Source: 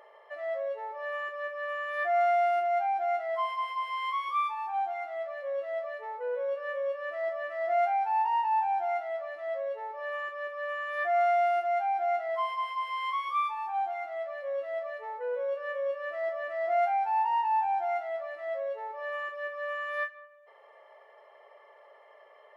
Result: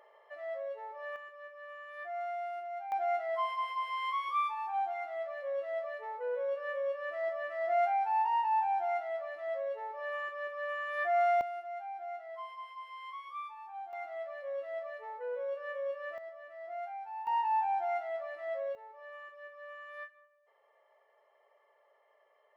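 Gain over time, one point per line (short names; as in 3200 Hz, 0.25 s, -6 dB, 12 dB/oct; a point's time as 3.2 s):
-6 dB
from 1.16 s -13 dB
from 2.92 s -2.5 dB
from 11.41 s -13 dB
from 13.93 s -5 dB
from 16.18 s -14.5 dB
from 17.27 s -3 dB
from 18.75 s -13 dB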